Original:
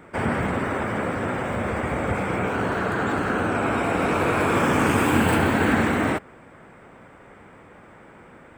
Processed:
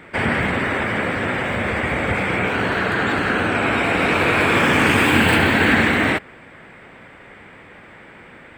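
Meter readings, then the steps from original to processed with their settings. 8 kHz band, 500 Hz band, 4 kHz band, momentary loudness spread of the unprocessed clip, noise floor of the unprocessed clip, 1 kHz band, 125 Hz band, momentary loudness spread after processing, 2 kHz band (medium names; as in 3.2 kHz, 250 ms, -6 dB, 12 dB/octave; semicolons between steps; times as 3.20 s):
+2.5 dB, +2.5 dB, +11.0 dB, 7 LU, -49 dBFS, +3.0 dB, +2.5 dB, 7 LU, +9.0 dB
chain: high-order bell 2.8 kHz +8.5 dB; trim +2.5 dB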